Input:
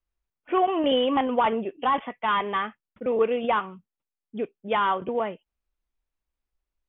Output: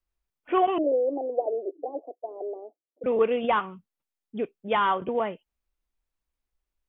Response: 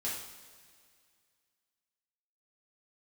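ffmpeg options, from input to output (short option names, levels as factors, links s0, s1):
-filter_complex "[0:a]asettb=1/sr,asplit=3[s0][s1][s2];[s0]atrim=end=0.784[s3];[s1]atrim=start=0.78:end=3.04,asetpts=PTS-STARTPTS,afade=t=in:d=0.004:c=qsin,afade=t=out:st=2.256:d=0.004:c=qsin,asuperpass=centerf=460:order=12:qfactor=1.1[s4];[s2]atrim=start=3.036[s5];[s3][s4]acrossfade=d=0.004:c1=hsin:c2=qsin[s6];[s6][s5]acrossfade=d=0.004:c1=qsin:c2=hsin"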